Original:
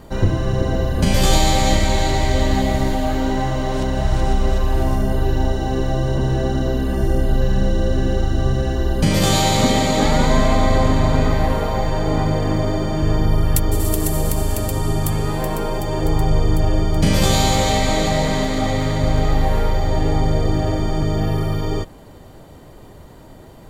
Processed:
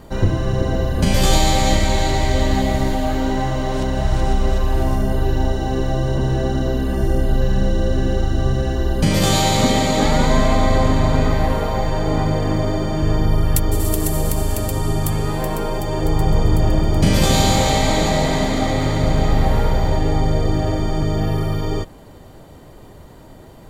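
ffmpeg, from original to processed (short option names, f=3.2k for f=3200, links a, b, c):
-filter_complex "[0:a]asettb=1/sr,asplit=3[a][b][c];[a]atrim=end=16.064[d];[b]atrim=start=16.06:end=19.97,asetpts=PTS-STARTPTS,afade=t=in:d=0.004:c=qsin,afade=t=out:st=3.906:d=0.004:c=qsin,asplit=8[e][f][g][h][i][j][k][l];[f]adelay=135,afreqshift=39,volume=-9.5dB[m];[g]adelay=270,afreqshift=78,volume=-14.1dB[n];[h]adelay=405,afreqshift=117,volume=-18.7dB[o];[i]adelay=540,afreqshift=156,volume=-23.2dB[p];[j]adelay=675,afreqshift=195,volume=-27.8dB[q];[k]adelay=810,afreqshift=234,volume=-32.4dB[r];[l]adelay=945,afreqshift=273,volume=-37dB[s];[e][m][n][o][p][q][r][s]amix=inputs=8:normalize=0,atrim=end_sample=172431[t];[c]atrim=start=19.966[u];[d][t]acrossfade=d=0.004:c1=hsin:c2=qsin[v];[v][u]acrossfade=d=0.004:c1=qsin:c2=hsin"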